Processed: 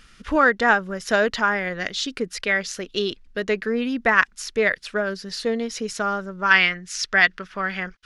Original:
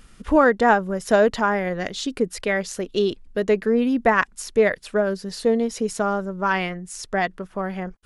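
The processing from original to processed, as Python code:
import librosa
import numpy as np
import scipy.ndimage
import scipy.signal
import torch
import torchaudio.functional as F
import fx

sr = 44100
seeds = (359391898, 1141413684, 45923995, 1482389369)

y = fx.band_shelf(x, sr, hz=2800.0, db=fx.steps((0.0, 9.0), (6.5, 16.0)), octaves=2.6)
y = y * 10.0 ** (-4.5 / 20.0)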